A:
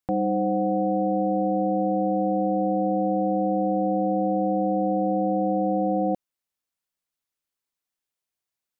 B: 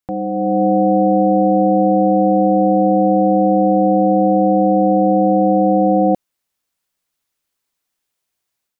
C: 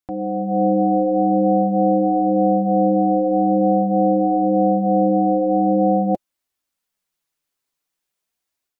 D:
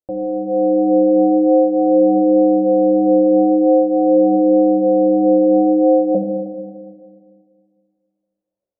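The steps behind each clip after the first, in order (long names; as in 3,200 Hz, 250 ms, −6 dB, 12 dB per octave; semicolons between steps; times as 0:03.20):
automatic gain control gain up to 9.5 dB; level +1 dB
flanger 0.46 Hz, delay 2.6 ms, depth 5 ms, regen −33%
low-pass with resonance 550 Hz, resonance Q 6.3; convolution reverb RT60 2.0 s, pre-delay 4 ms, DRR 2.5 dB; level −3.5 dB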